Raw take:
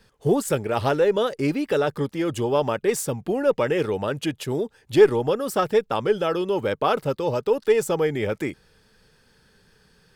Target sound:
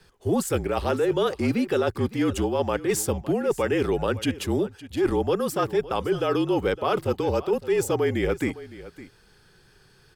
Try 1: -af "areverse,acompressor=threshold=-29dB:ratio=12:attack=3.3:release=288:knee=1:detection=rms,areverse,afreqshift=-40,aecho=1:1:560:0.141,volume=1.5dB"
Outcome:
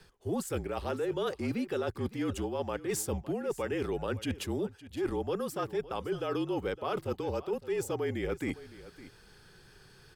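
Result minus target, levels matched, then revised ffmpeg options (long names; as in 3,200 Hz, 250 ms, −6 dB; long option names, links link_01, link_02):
downward compressor: peak gain reduction +9.5 dB
-af "areverse,acompressor=threshold=-18.5dB:ratio=12:attack=3.3:release=288:knee=1:detection=rms,areverse,afreqshift=-40,aecho=1:1:560:0.141,volume=1.5dB"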